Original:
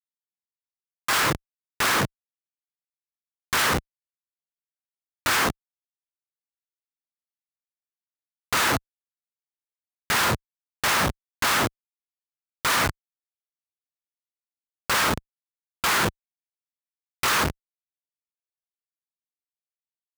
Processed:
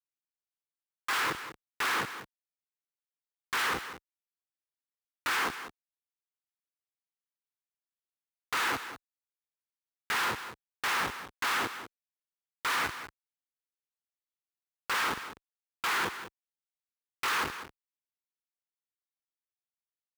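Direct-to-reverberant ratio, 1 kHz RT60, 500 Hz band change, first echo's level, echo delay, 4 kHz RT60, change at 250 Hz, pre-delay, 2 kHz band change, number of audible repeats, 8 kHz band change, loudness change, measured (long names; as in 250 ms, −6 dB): no reverb audible, no reverb audible, −11.0 dB, −12.0 dB, 194 ms, no reverb audible, −12.5 dB, no reverb audible, −6.5 dB, 1, −12.0 dB, −8.0 dB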